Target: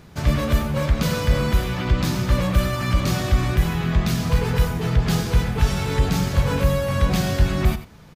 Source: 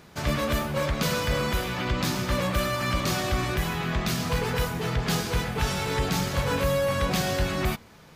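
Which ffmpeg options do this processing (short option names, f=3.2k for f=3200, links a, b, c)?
-af "lowshelf=f=190:g=11.5,aecho=1:1:91:0.211"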